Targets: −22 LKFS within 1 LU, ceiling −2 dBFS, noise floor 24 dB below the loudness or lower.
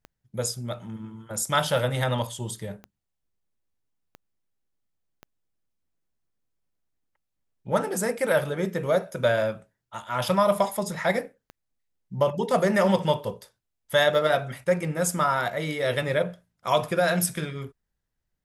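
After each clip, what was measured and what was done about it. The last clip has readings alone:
number of clicks 7; integrated loudness −25.5 LKFS; sample peak −8.5 dBFS; target loudness −22.0 LKFS
→ click removal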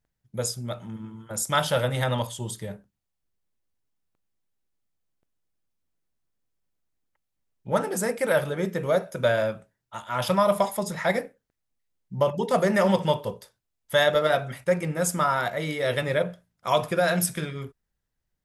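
number of clicks 0; integrated loudness −25.5 LKFS; sample peak −8.5 dBFS; target loudness −22.0 LKFS
→ level +3.5 dB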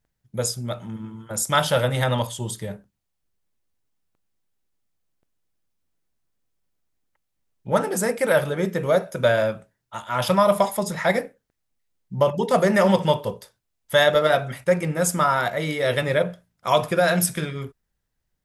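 integrated loudness −22.0 LKFS; sample peak −5.0 dBFS; background noise floor −78 dBFS

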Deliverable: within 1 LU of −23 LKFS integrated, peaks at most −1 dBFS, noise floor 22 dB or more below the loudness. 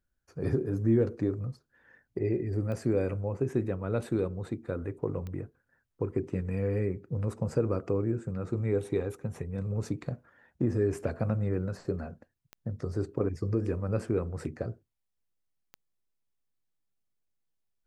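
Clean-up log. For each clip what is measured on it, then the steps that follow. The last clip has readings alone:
number of clicks 4; integrated loudness −32.0 LKFS; sample peak −15.0 dBFS; target loudness −23.0 LKFS
→ click removal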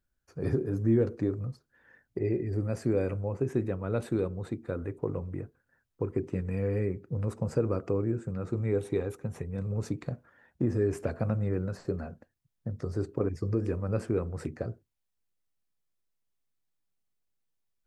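number of clicks 0; integrated loudness −32.0 LKFS; sample peak −15.0 dBFS; target loudness −23.0 LKFS
→ level +9 dB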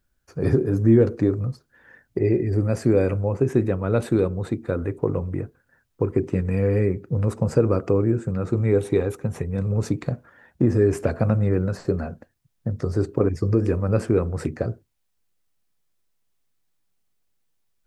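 integrated loudness −23.0 LKFS; sample peak −6.0 dBFS; background noise floor −71 dBFS

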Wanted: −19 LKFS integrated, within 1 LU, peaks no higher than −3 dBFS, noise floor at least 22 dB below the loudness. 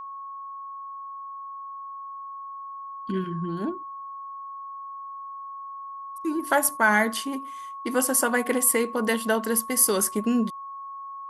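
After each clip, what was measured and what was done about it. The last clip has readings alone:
interfering tone 1,100 Hz; level of the tone −35 dBFS; integrated loudness −24.0 LKFS; sample peak −6.0 dBFS; target loudness −19.0 LKFS
→ notch filter 1,100 Hz, Q 30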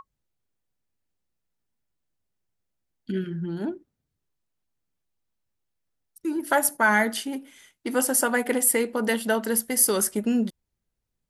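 interfering tone none found; integrated loudness −24.0 LKFS; sample peak −6.0 dBFS; target loudness −19.0 LKFS
→ level +5 dB
brickwall limiter −3 dBFS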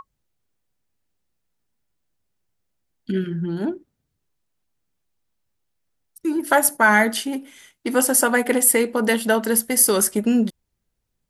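integrated loudness −19.0 LKFS; sample peak −3.0 dBFS; background noise floor −77 dBFS

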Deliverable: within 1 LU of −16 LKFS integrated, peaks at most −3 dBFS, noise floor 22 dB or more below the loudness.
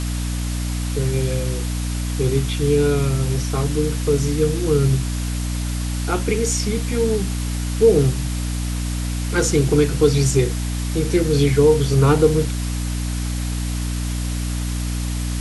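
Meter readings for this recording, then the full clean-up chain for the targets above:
mains hum 60 Hz; hum harmonics up to 300 Hz; level of the hum −21 dBFS; background noise floor −24 dBFS; target noise floor −43 dBFS; integrated loudness −20.5 LKFS; sample peak −2.5 dBFS; target loudness −16.0 LKFS
→ mains-hum notches 60/120/180/240/300 Hz
broadband denoise 19 dB, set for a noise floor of −24 dBFS
level +4.5 dB
brickwall limiter −3 dBFS

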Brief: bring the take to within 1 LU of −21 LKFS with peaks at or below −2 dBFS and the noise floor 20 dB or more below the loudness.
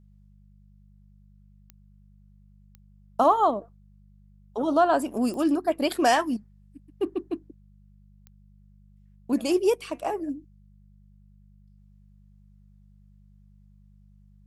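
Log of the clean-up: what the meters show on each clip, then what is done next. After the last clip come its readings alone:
number of clicks 4; mains hum 50 Hz; hum harmonics up to 200 Hz; level of the hum −52 dBFS; integrated loudness −25.5 LKFS; sample peak −9.0 dBFS; target loudness −21.0 LKFS
→ click removal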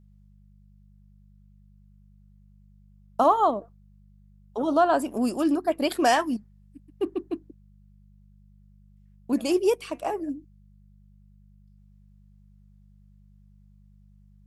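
number of clicks 0; mains hum 50 Hz; hum harmonics up to 200 Hz; level of the hum −52 dBFS
→ hum removal 50 Hz, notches 4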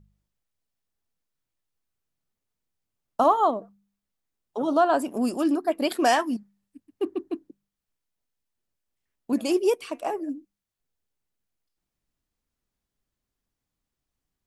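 mains hum none found; integrated loudness −25.0 LKFS; sample peak −9.0 dBFS; target loudness −21.0 LKFS
→ level +4 dB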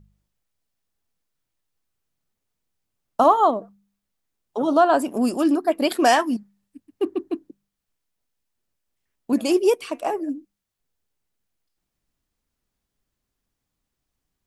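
integrated loudness −21.0 LKFS; sample peak −5.0 dBFS; background noise floor −82 dBFS

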